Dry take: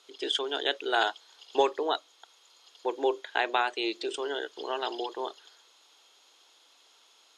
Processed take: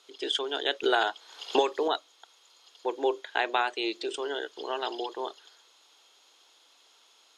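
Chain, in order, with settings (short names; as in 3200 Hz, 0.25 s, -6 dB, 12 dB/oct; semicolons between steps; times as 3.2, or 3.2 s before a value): 0.83–1.88 three-band squash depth 100%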